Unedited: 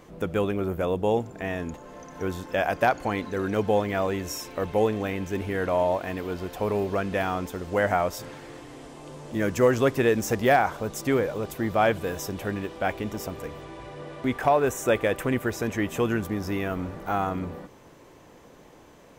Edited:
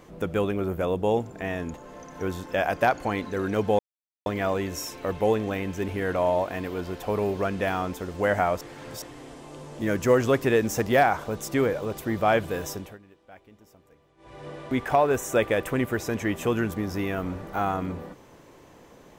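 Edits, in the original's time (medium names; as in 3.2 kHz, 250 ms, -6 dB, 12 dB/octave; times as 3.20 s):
3.79 s: insert silence 0.47 s
8.14–8.55 s: reverse
12.22–13.99 s: dip -22.5 dB, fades 0.29 s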